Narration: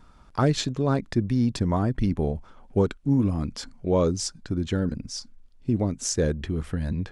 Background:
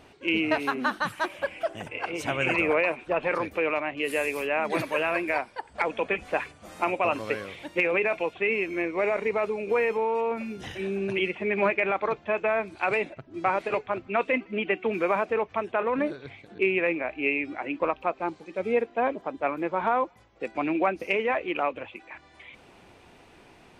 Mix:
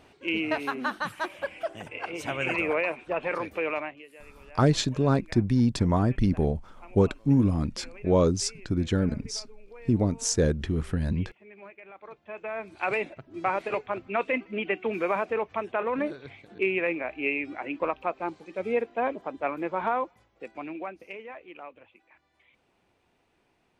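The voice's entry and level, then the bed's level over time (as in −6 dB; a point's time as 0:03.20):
4.20 s, +0.5 dB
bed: 0:03.84 −3 dB
0:04.08 −23.5 dB
0:11.83 −23.5 dB
0:12.86 −2 dB
0:19.88 −2 dB
0:21.28 −16.5 dB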